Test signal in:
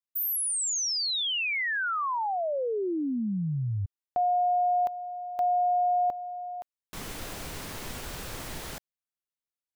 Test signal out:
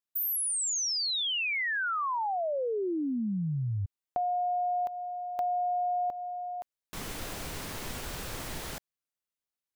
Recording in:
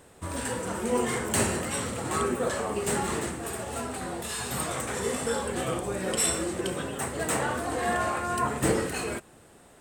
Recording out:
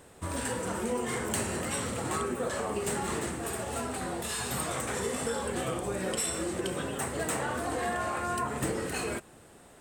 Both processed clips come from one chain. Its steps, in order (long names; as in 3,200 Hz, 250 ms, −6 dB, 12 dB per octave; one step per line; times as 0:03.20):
downward compressor, threshold −28 dBFS